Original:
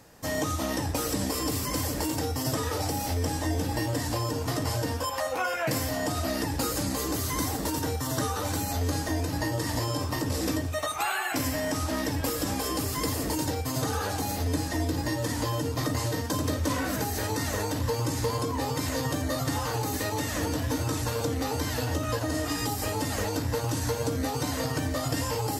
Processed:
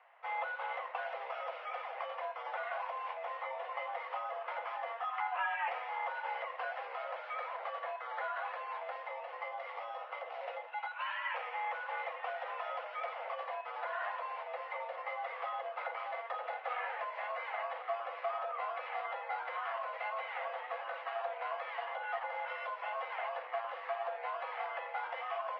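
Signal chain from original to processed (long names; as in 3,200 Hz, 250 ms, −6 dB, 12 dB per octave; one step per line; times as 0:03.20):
single-sideband voice off tune +220 Hz 400–2,600 Hz
0:08.91–0:11.24: dynamic equaliser 1,400 Hz, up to −5 dB, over −40 dBFS, Q 0.96
level −5.5 dB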